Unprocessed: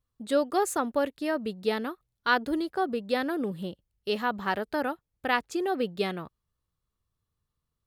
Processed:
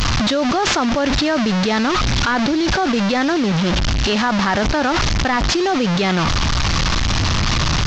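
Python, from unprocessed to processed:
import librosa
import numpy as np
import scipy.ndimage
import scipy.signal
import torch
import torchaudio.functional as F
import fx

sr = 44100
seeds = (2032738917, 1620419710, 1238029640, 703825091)

y = fx.delta_mod(x, sr, bps=32000, step_db=-32.5)
y = fx.peak_eq(y, sr, hz=450.0, db=-8.0, octaves=0.55)
y = fx.env_flatten(y, sr, amount_pct=100)
y = F.gain(torch.from_numpy(y), 6.0).numpy()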